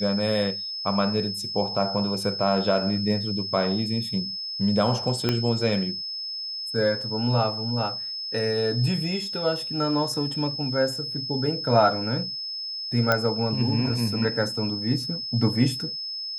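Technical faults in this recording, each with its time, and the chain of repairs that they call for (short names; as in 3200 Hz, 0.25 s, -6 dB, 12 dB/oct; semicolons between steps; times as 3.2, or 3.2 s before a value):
tone 5200 Hz -30 dBFS
5.29 pop -9 dBFS
13.12 pop -7 dBFS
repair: de-click; notch 5200 Hz, Q 30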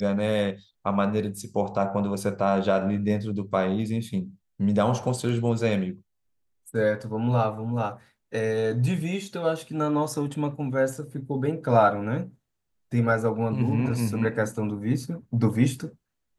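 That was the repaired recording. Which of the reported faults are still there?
5.29 pop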